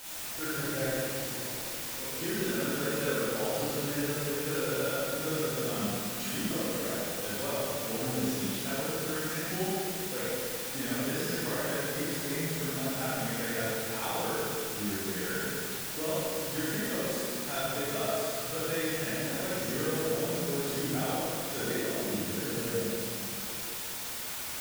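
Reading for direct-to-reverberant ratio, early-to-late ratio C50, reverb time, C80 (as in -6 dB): -10.0 dB, -6.0 dB, 2.6 s, -3.0 dB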